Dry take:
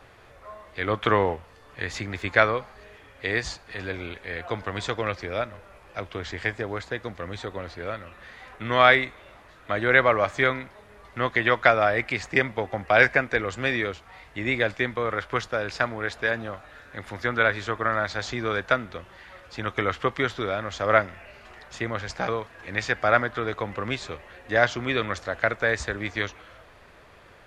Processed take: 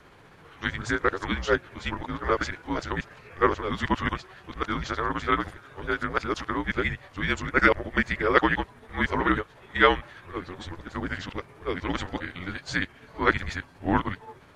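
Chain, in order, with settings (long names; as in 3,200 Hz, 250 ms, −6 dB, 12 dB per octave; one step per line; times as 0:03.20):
played backwards from end to start
time stretch by overlap-add 0.53×, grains 133 ms
frequency shifter −180 Hz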